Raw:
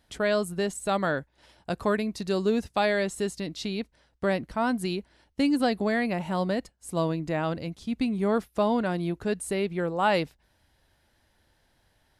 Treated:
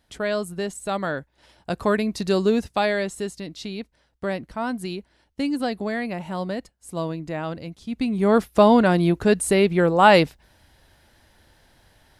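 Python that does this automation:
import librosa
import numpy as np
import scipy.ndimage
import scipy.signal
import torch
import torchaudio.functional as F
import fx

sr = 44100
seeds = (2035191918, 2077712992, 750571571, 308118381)

y = fx.gain(x, sr, db=fx.line((1.13, 0.0), (2.27, 6.5), (3.38, -1.0), (7.83, -1.0), (8.48, 10.0)))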